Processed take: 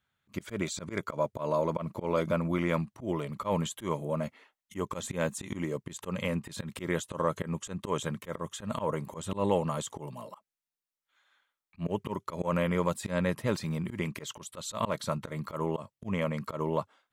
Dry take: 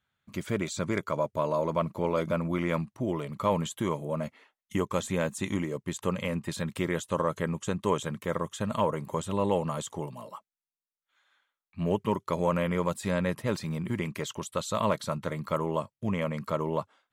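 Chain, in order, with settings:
volume swells 108 ms

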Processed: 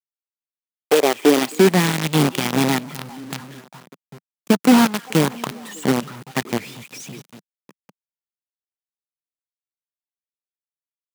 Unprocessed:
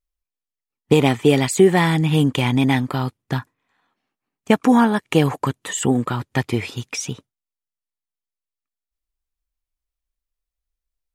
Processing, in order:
echo through a band-pass that steps 199 ms, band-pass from 2,600 Hz, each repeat −1.4 octaves, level −9 dB
log-companded quantiser 2 bits
high-pass filter sweep 950 Hz → 180 Hz, 0:00.40–0:01.77
level −10.5 dB

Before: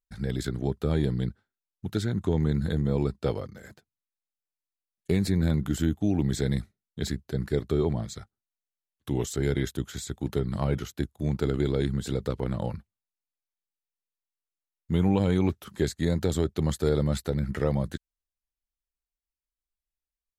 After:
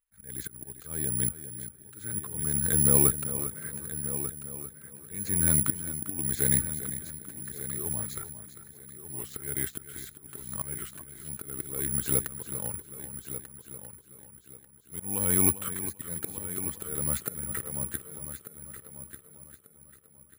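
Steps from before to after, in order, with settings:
flat-topped bell 1,700 Hz +8 dB
volume swells 680 ms
on a send: echo machine with several playback heads 397 ms, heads first and third, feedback 43%, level −12 dB
on the sum: bad sample-rate conversion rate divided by 4×, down filtered, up zero stuff
level −1 dB

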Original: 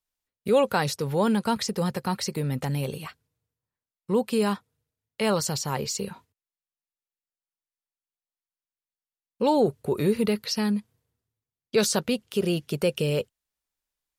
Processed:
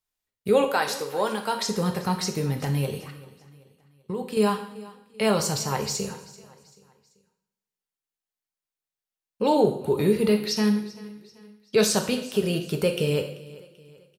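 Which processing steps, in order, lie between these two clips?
0:00.64–0:01.64: high-pass filter 440 Hz 12 dB per octave
0:02.98–0:04.37: output level in coarse steps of 15 dB
repeating echo 387 ms, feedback 43%, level −20 dB
coupled-rooms reverb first 0.61 s, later 1.7 s, from −22 dB, DRR 3.5 dB

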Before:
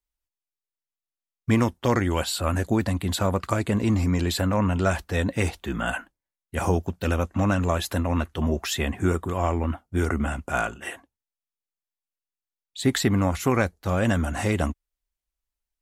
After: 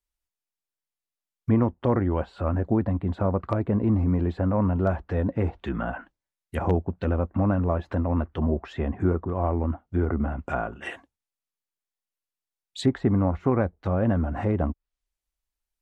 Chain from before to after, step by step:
treble cut that deepens with the level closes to 940 Hz, closed at −23 dBFS
wave folding −10 dBFS

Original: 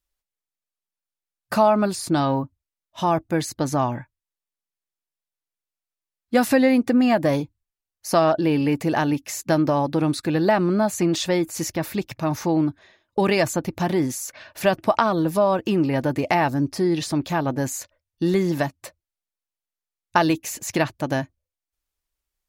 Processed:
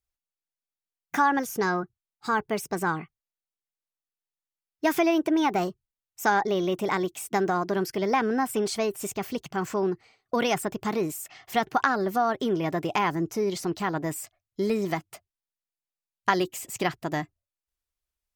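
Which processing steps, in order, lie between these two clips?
gliding playback speed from 134% → 111%
dynamic equaliser 1,600 Hz, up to +5 dB, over −39 dBFS, Q 3.4
level −5.5 dB

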